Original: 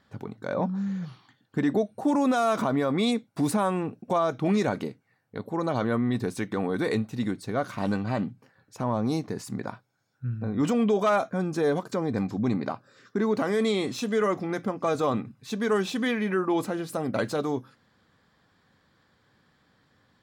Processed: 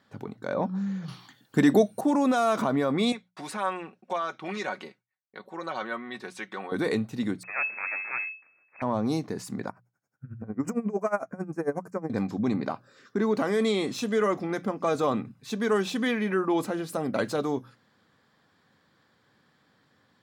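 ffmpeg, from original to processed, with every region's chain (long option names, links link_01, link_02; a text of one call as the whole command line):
ffmpeg -i in.wav -filter_complex "[0:a]asettb=1/sr,asplit=3[link_01][link_02][link_03];[link_01]atrim=end=1.084[link_04];[link_02]atrim=start=1.08:end=2.01,asetpts=PTS-STARTPTS,afade=type=in:duration=0.004:curve=qsin,afade=type=out:start_time=0.926:duration=0.004:curve=qsin,highshelf=frequency=5200:gain=12,acontrast=26[link_05];[link_03]atrim=start=2.006[link_06];[link_04][link_05]acrossfade=duration=0.004:curve1=hsin:curve2=qsin[link_07];[link_07][link_06]acrossfade=duration=0.004:curve1=qsin:curve2=hsin,asettb=1/sr,asplit=3[link_08][link_09][link_10];[link_08]atrim=end=3.124[link_11];[link_09]atrim=start=3.12:end=6.72,asetpts=PTS-STARTPTS,afade=type=in:duration=0.004:curve=qsin,afade=type=out:start_time=3.596:duration=0.004:curve=qsin,agate=range=-33dB:threshold=-56dB:ratio=3:release=100:detection=peak,bandpass=frequency=2200:width_type=q:width=0.59,aecho=1:1:5.4:0.51,atrim=end_sample=158760[link_12];[link_10]atrim=start=6.716[link_13];[link_11][link_12]acrossfade=duration=0.004:curve1=hsin:curve2=qsin[link_14];[link_14][link_13]acrossfade=duration=0.004:curve1=qsin:curve2=hsin,asettb=1/sr,asplit=3[link_15][link_16][link_17];[link_15]atrim=end=7.434[link_18];[link_16]atrim=start=7.43:end=8.82,asetpts=PTS-STARTPTS,afade=type=in:duration=0.004:curve=qsin,afade=type=out:start_time=1.386:duration=0.004:curve=qsin,highpass=330,aeval=exprs='abs(val(0))':channel_layout=same,lowpass=frequency=2200:width_type=q:width=0.5098,lowpass=frequency=2200:width_type=q:width=0.6013,lowpass=frequency=2200:width_type=q:width=0.9,lowpass=frequency=2200:width_type=q:width=2.563,afreqshift=-2600[link_19];[link_17]atrim=start=8.816[link_20];[link_18][link_19]acrossfade=duration=0.004:curve1=hsin:curve2=qsin[link_21];[link_21][link_20]acrossfade=duration=0.004:curve1=qsin:curve2=hsin,asettb=1/sr,asplit=3[link_22][link_23][link_24];[link_22]atrim=end=9.694[link_25];[link_23]atrim=start=9.69:end=12.1,asetpts=PTS-STARTPTS,afade=type=in:duration=0.004:curve=qsin,afade=type=out:start_time=2.406:duration=0.004:curve=qsin,asuperstop=centerf=3500:order=4:qfactor=0.97,aeval=exprs='val(0)*pow(10,-21*(0.5-0.5*cos(2*PI*11*n/s))/20)':channel_layout=same[link_26];[link_24]atrim=start=12.096[link_27];[link_25][link_26]acrossfade=duration=0.004:curve1=hsin:curve2=qsin[link_28];[link_28][link_27]acrossfade=duration=0.004:curve1=qsin:curve2=hsin,highpass=110,bandreject=frequency=60:width_type=h:width=6,bandreject=frequency=120:width_type=h:width=6,bandreject=frequency=180:width_type=h:width=6" out.wav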